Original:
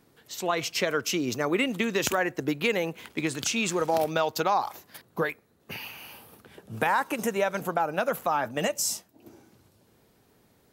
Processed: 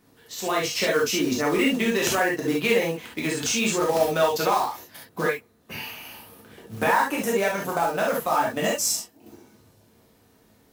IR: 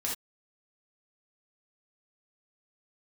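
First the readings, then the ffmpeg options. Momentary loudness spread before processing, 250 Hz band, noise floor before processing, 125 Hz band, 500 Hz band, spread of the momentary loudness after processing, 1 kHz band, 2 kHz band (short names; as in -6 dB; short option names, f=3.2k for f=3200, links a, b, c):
14 LU, +4.0 dB, -64 dBFS, +2.5 dB, +4.5 dB, 15 LU, +3.0 dB, +4.0 dB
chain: -filter_complex "[0:a]acrusher=bits=4:mode=log:mix=0:aa=0.000001[a];[1:a]atrim=start_sample=2205,atrim=end_sample=3528[b];[a][b]afir=irnorm=-1:irlink=0"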